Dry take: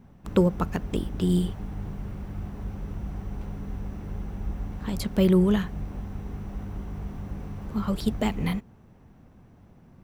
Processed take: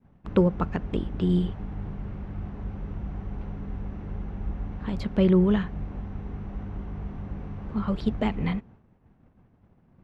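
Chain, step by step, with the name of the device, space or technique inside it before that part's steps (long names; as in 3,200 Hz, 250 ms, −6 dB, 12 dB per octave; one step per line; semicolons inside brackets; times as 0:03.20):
hearing-loss simulation (low-pass filter 3,000 Hz 12 dB per octave; downward expander −46 dBFS)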